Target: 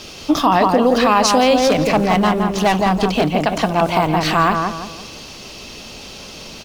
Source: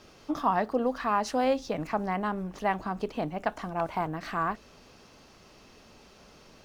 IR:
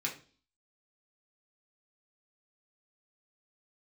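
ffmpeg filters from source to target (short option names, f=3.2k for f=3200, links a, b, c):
-filter_complex "[0:a]highshelf=f=2.2k:t=q:w=1.5:g=7,asplit=2[a][b];[b]adelay=169,lowpass=f=1.5k:p=1,volume=-4dB,asplit=2[c][d];[d]adelay=169,lowpass=f=1.5k:p=1,volume=0.4,asplit=2[e][f];[f]adelay=169,lowpass=f=1.5k:p=1,volume=0.4,asplit=2[g][h];[h]adelay=169,lowpass=f=1.5k:p=1,volume=0.4,asplit=2[i][j];[j]adelay=169,lowpass=f=1.5k:p=1,volume=0.4[k];[c][e][g][i][k]amix=inputs=5:normalize=0[l];[a][l]amix=inputs=2:normalize=0,asettb=1/sr,asplit=3[m][n][o];[m]atrim=end=1.584[p];[n]atrim=start=1.58:end=3.32,asetpts=PTS-STARTPTS,afade=t=in:d=0.004:c=qsin,afade=t=out:st=1.736:d=0.004:c=qsin,asoftclip=type=hard:threshold=-25.5dB[q];[o]atrim=start=3.316[r];[p][q]acrossfade=d=0.004:c1=hsin:c2=qsin[s];[s][r]acrossfade=d=0.004:c1=qsin:c2=hsin,alimiter=level_in=19dB:limit=-1dB:release=50:level=0:latency=1,volume=-3.5dB"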